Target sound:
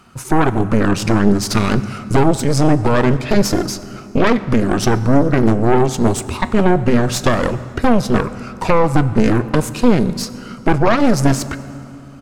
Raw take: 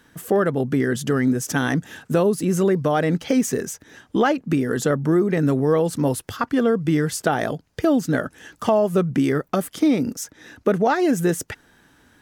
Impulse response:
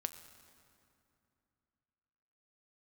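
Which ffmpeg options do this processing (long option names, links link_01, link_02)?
-filter_complex "[0:a]aeval=exprs='0.562*(cos(1*acos(clip(val(0)/0.562,-1,1)))-cos(1*PI/2))+0.178*(cos(3*acos(clip(val(0)/0.562,-1,1)))-cos(3*PI/2))+0.178*(cos(5*acos(clip(val(0)/0.562,-1,1)))-cos(5*PI/2))+0.158*(cos(6*acos(clip(val(0)/0.562,-1,1)))-cos(6*PI/2))':channel_layout=same,asetrate=35002,aresample=44100,atempo=1.25992,asplit=2[link_01][link_02];[1:a]atrim=start_sample=2205,highshelf=frequency=8400:gain=-6[link_03];[link_02][link_03]afir=irnorm=-1:irlink=0,volume=9.5dB[link_04];[link_01][link_04]amix=inputs=2:normalize=0,volume=-8dB"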